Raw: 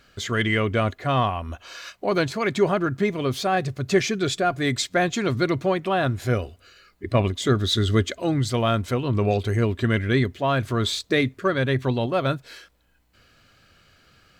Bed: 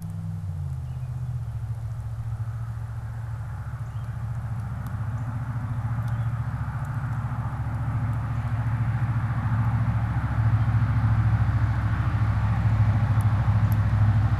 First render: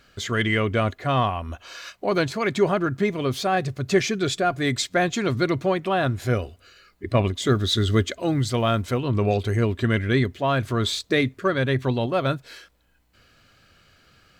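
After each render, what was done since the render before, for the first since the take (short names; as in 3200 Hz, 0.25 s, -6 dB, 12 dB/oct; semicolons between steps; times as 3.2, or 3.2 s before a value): 7.41–8.98 short-mantissa float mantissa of 6-bit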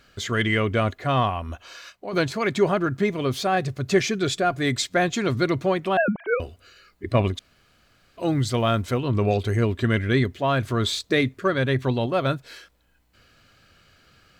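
1.51–2.13 fade out, to -10.5 dB; 5.97–6.4 sine-wave speech; 7.39–8.17 room tone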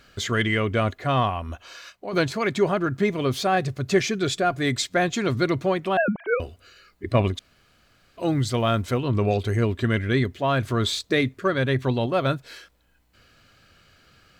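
vocal rider 0.5 s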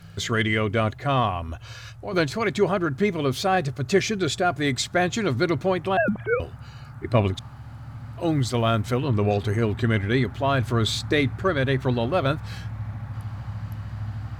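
add bed -11.5 dB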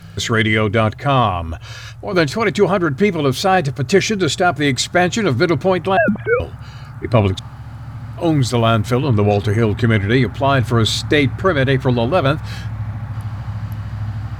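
gain +7.5 dB; limiter -2 dBFS, peak gain reduction 1.5 dB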